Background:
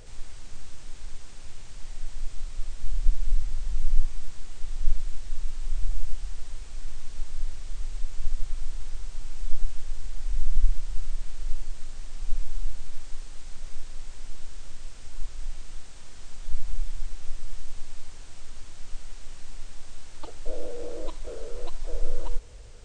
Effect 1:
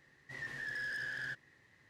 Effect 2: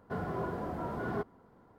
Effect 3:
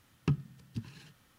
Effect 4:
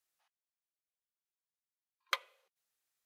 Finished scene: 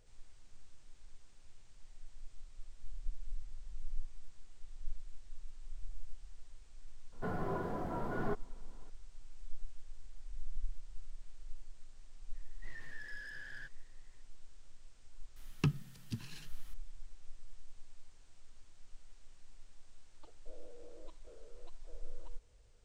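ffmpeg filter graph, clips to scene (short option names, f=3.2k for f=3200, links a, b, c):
-filter_complex "[0:a]volume=-18.5dB[a];[3:a]highshelf=f=2.2k:g=8.5[b];[2:a]atrim=end=1.78,asetpts=PTS-STARTPTS,volume=-2.5dB,afade=t=in:d=0.004:c=hsin,afade=t=out:st=1.776:d=0.004:c=hsin,adelay=7120[c];[1:a]atrim=end=1.89,asetpts=PTS-STARTPTS,volume=-9dB,afade=t=in:d=0.004:c=hsin,afade=t=out:st=1.886:d=0.004:c=hsin,adelay=12330[d];[b]atrim=end=1.38,asetpts=PTS-STARTPTS,volume=-2.5dB,afade=t=in:d=0.004:c=hsin,afade=t=out:st=1.376:d=0.004:c=hsin,adelay=15360[e];[a][c][d][e]amix=inputs=4:normalize=0"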